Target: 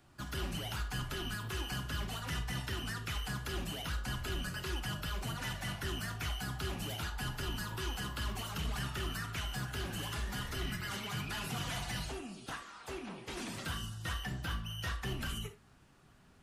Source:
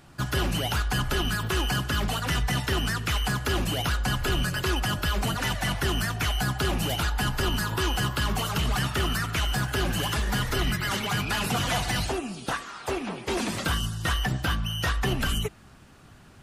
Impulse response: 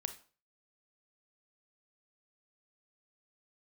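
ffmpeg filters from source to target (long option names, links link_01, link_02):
-filter_complex "[0:a]acrossover=split=280|1200|2600[link_01][link_02][link_03][link_04];[link_02]asoftclip=type=tanh:threshold=-33.5dB[link_05];[link_01][link_05][link_03][link_04]amix=inputs=4:normalize=0,flanger=delay=2.8:depth=9.3:regen=-69:speed=0.24:shape=triangular[link_06];[1:a]atrim=start_sample=2205,atrim=end_sample=3969[link_07];[link_06][link_07]afir=irnorm=-1:irlink=0,volume=-6dB"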